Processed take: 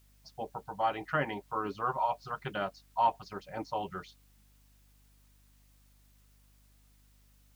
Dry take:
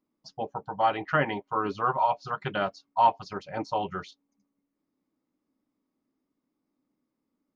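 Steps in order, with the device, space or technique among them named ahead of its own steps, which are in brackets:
video cassette with head-switching buzz (hum with harmonics 50 Hz, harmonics 5, −58 dBFS −8 dB per octave; white noise bed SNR 33 dB)
level −6 dB

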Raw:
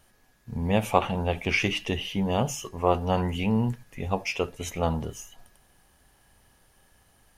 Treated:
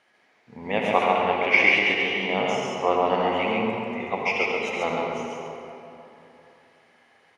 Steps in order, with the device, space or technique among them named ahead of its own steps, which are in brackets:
station announcement (band-pass filter 340–4,000 Hz; parametric band 2,100 Hz +10.5 dB 0.34 octaves; loudspeakers that aren't time-aligned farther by 28 metres −11 dB, 47 metres −3 dB; convolution reverb RT60 3.0 s, pre-delay 58 ms, DRR 0.5 dB)

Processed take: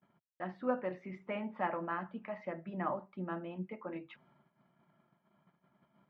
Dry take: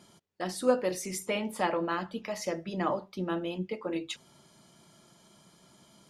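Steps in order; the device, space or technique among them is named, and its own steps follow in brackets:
noise gate −58 dBFS, range −27 dB
bass cabinet (loudspeaker in its box 81–2,100 Hz, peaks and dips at 94 Hz −9 dB, 320 Hz −5 dB, 460 Hz −8 dB)
level −4.5 dB

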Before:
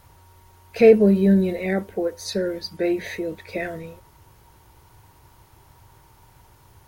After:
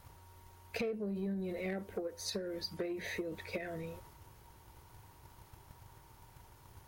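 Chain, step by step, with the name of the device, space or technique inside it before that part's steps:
drum-bus smash (transient designer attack +8 dB, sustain +4 dB; downward compressor 8 to 1, threshold −27 dBFS, peak gain reduction 22 dB; soft clipping −21.5 dBFS, distortion −19 dB)
level −7 dB

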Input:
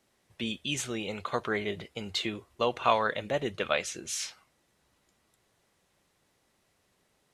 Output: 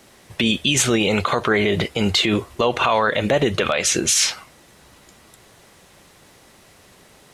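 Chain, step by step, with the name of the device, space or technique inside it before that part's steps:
loud club master (downward compressor 2.5 to 1, threshold −30 dBFS, peak gain reduction 8 dB; hard clipping −16.5 dBFS, distortion −40 dB; boost into a limiter +28 dB)
level −6.5 dB

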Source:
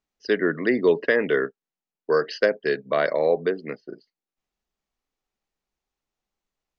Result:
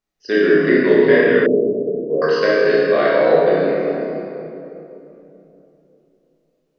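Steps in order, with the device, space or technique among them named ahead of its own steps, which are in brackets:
tunnel (flutter between parallel walls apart 5.4 metres, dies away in 0.31 s; convolution reverb RT60 3.0 s, pre-delay 17 ms, DRR −6.5 dB)
0:01.46–0:02.22: elliptic low-pass filter 670 Hz, stop band 50 dB
level −1 dB

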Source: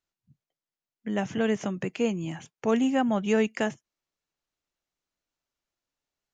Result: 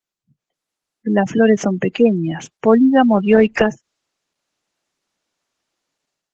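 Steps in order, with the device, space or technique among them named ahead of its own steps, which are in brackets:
noise-suppressed video call (high-pass filter 150 Hz 12 dB per octave; gate on every frequency bin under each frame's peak −20 dB strong; automatic gain control gain up to 14 dB; level +1 dB; Opus 16 kbit/s 48,000 Hz)

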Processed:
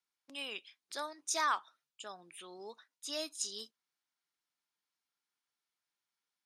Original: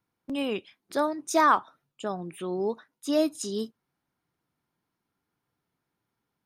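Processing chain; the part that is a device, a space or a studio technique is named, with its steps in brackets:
piezo pickup straight into a mixer (low-pass filter 6,000 Hz 12 dB per octave; first difference)
level +4.5 dB

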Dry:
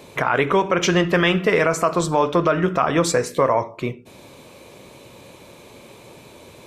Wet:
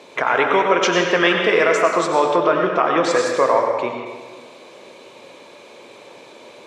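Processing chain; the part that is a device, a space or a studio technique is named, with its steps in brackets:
supermarket ceiling speaker (band-pass filter 330–6,100 Hz; convolution reverb RT60 1.5 s, pre-delay 84 ms, DRR 2 dB)
0:02.36–0:03.11: high-frequency loss of the air 74 metres
level +1.5 dB

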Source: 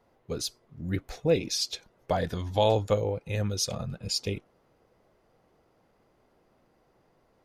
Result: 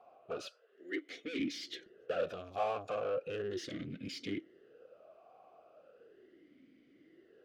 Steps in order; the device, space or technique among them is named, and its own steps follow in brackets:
0:00.46–0:01.38: high-pass filter 760 Hz → 260 Hz 24 dB per octave
talk box (tube saturation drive 38 dB, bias 0.3; formant filter swept between two vowels a-i 0.37 Hz)
level +16 dB

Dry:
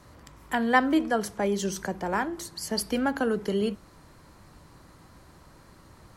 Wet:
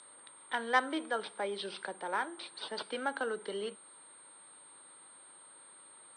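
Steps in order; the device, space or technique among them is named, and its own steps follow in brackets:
toy sound module (linearly interpolated sample-rate reduction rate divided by 4×; switching amplifier with a slow clock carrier 8,600 Hz; loudspeaker in its box 680–4,700 Hz, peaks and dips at 700 Hz −8 dB, 1,100 Hz −5 dB, 1,800 Hz −5 dB, 2,600 Hz −6 dB, 3,800 Hz +9 dB)

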